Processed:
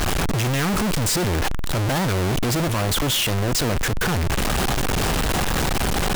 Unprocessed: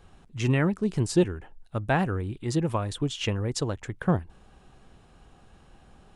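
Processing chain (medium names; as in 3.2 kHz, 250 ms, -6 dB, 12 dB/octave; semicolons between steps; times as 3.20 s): one-bit comparator; 2.68–3.99 s: three bands expanded up and down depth 40%; trim +8 dB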